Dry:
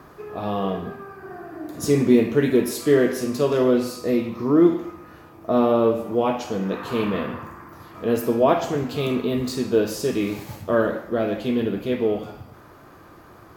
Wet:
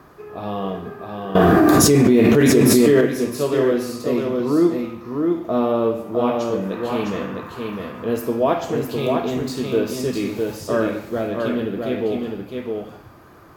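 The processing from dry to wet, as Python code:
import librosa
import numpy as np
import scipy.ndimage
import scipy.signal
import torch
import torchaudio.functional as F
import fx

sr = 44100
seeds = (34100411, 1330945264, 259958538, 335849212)

y = x + 10.0 ** (-4.0 / 20.0) * np.pad(x, (int(657 * sr / 1000.0), 0))[:len(x)]
y = fx.env_flatten(y, sr, amount_pct=100, at=(1.35, 3.01))
y = y * 10.0 ** (-1.0 / 20.0)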